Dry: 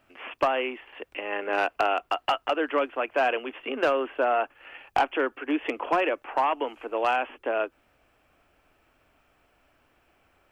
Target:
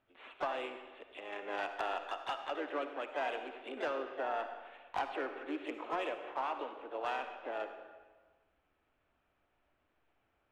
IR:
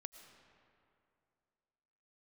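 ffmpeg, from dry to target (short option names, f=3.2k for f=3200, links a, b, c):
-filter_complex "[0:a]adynamicsmooth=sensitivity=2.5:basefreq=4k,asplit=2[a][b];[b]asetrate=55563,aresample=44100,atempo=0.793701,volume=-7dB[c];[a][c]amix=inputs=2:normalize=0[d];[1:a]atrim=start_sample=2205,asetrate=83790,aresample=44100[e];[d][e]afir=irnorm=-1:irlink=0,volume=-2dB"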